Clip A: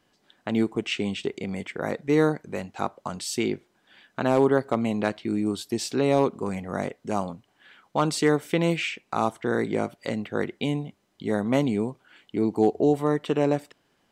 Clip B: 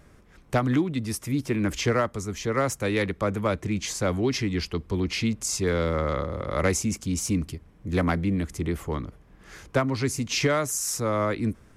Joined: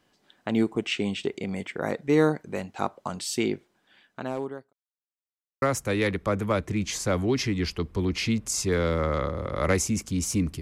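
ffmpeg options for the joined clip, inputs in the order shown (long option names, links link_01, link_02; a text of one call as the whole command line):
ffmpeg -i cue0.wav -i cue1.wav -filter_complex "[0:a]apad=whole_dur=10.61,atrim=end=10.61,asplit=2[link_01][link_02];[link_01]atrim=end=4.73,asetpts=PTS-STARTPTS,afade=type=out:start_time=3.44:duration=1.29[link_03];[link_02]atrim=start=4.73:end=5.62,asetpts=PTS-STARTPTS,volume=0[link_04];[1:a]atrim=start=2.57:end=7.56,asetpts=PTS-STARTPTS,afade=type=in:duration=0.004:curve=hsin[link_05];[link_03][link_04][link_05]concat=n=3:v=0:a=1" out.wav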